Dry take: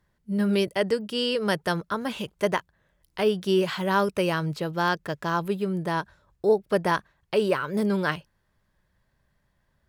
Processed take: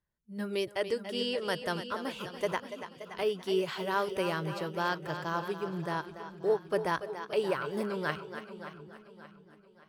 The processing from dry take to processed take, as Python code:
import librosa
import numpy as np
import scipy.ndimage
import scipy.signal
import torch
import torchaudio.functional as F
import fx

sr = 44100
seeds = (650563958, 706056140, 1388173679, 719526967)

y = fx.echo_split(x, sr, split_hz=310.0, low_ms=713, high_ms=286, feedback_pct=52, wet_db=-10.0)
y = fx.noise_reduce_blind(y, sr, reduce_db=10)
y = fx.echo_warbled(y, sr, ms=577, feedback_pct=43, rate_hz=2.8, cents=76, wet_db=-14.0)
y = F.gain(torch.from_numpy(y), -7.0).numpy()